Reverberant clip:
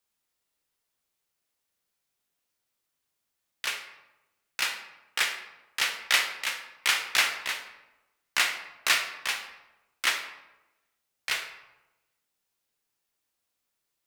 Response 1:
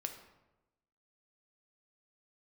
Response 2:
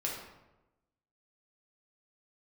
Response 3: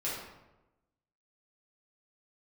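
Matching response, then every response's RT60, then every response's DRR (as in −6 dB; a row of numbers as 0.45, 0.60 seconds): 1; 1.0, 1.0, 1.0 seconds; 5.0, −3.5, −9.0 decibels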